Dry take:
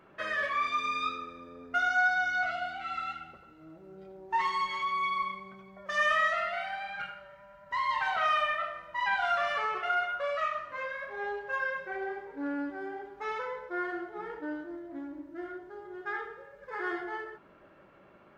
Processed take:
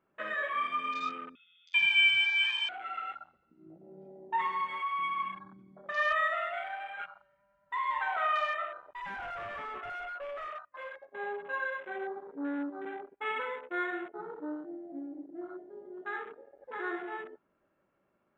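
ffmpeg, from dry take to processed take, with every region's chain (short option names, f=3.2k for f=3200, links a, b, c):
-filter_complex "[0:a]asettb=1/sr,asplit=3[a][b][c];[a]atrim=end=1.354[d];[b]atrim=start=1.35:end=2.69,asetpts=PTS-STARTPTS,afade=t=in:d=0.004:c=qsin,afade=t=out:st=1.336:d=0.004:c=qsin,equalizer=f=900:t=o:w=2.3:g=6.5,lowpass=f=3.2k:t=q:w=0.5098,lowpass=f=3.2k:t=q:w=0.6013,lowpass=f=3.2k:t=q:w=0.9,lowpass=f=3.2k:t=q:w=2.563,afreqshift=-3800[e];[c]atrim=start=2.686[f];[d][e]acrossfade=d=0.004:c1=hsin:c2=qsin[g];[g][f]acrossfade=d=0.004:c1=qsin:c2=hsin,asettb=1/sr,asplit=3[h][i][j];[h]atrim=end=8.934[k];[i]atrim=start=8.93:end=11.15,asetpts=PTS-STARTPTS,afade=t=in:d=0.004:c=qsin,afade=t=out:st=2.216:d=0.004:c=qsin,agate=range=-33dB:threshold=-35dB:ratio=3:release=100:detection=peak,lowpass=3.3k,asoftclip=type=hard:threshold=-36dB[l];[j]atrim=start=11.146[m];[k][l]acrossfade=d=0.004:c1=hsin:c2=qsin[n];[n][m]acrossfade=d=0.004:c1=qsin:c2=hsin,asettb=1/sr,asplit=3[o][p][q];[o]atrim=end=12.854[r];[p]atrim=start=12.85:end=14.14,asetpts=PTS-STARTPTS,afade=t=in:d=0.004:c=qsin,afade=t=out:st=1.286:d=0.004:c=qsin,agate=range=-33dB:threshold=-42dB:ratio=3:release=100:detection=peak,lowpass=f=2.5k:t=q:w=3.7[s];[q]atrim=start=14.136[t];[r][s]acrossfade=d=0.004:c1=hsin:c2=qsin[u];[u][t]acrossfade=d=0.004:c1=qsin:c2=hsin,lowpass=f=3.7k:p=1,afwtdn=0.00891,equalizer=f=240:w=4.1:g=3.5,volume=-1.5dB"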